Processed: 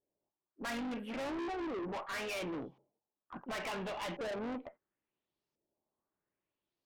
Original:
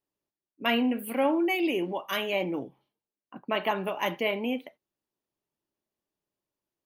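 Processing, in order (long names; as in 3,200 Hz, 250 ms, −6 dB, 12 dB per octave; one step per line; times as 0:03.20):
high-shelf EQ 3,400 Hz −5 dB
pitch-shifted copies added +3 semitones −14 dB
auto-filter low-pass saw up 0.72 Hz 510–5,800 Hz
tube saturation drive 36 dB, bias 0.25
level −1 dB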